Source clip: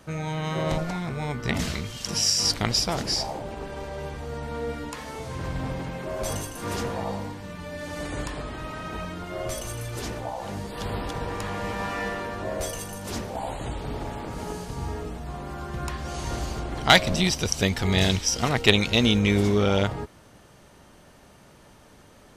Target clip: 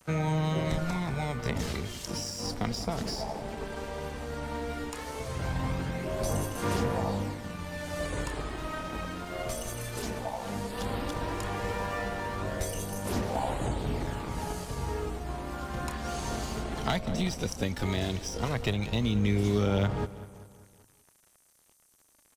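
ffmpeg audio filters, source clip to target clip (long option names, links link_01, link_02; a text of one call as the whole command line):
ffmpeg -i in.wav -filter_complex "[0:a]acrossover=split=100|210|1100[link_01][link_02][link_03][link_04];[link_01]acompressor=threshold=-35dB:ratio=4[link_05];[link_02]acompressor=threshold=-33dB:ratio=4[link_06];[link_03]acompressor=threshold=-32dB:ratio=4[link_07];[link_04]acompressor=threshold=-38dB:ratio=4[link_08];[link_05][link_06][link_07][link_08]amix=inputs=4:normalize=0,aphaser=in_gain=1:out_gain=1:delay=4.6:decay=0.35:speed=0.15:type=sinusoidal,acrossover=split=7000[link_09][link_10];[link_09]aeval=exprs='sgn(val(0))*max(abs(val(0))-0.00501,0)':channel_layout=same[link_11];[link_10]asplit=2[link_12][link_13];[link_13]adelay=29,volume=-2.5dB[link_14];[link_12][link_14]amix=inputs=2:normalize=0[link_15];[link_11][link_15]amix=inputs=2:normalize=0,asplit=2[link_16][link_17];[link_17]adelay=194,lowpass=frequency=3900:poles=1,volume=-15dB,asplit=2[link_18][link_19];[link_19]adelay=194,lowpass=frequency=3900:poles=1,volume=0.52,asplit=2[link_20][link_21];[link_21]adelay=194,lowpass=frequency=3900:poles=1,volume=0.52,asplit=2[link_22][link_23];[link_23]adelay=194,lowpass=frequency=3900:poles=1,volume=0.52,asplit=2[link_24][link_25];[link_25]adelay=194,lowpass=frequency=3900:poles=1,volume=0.52[link_26];[link_16][link_18][link_20][link_22][link_24][link_26]amix=inputs=6:normalize=0" out.wav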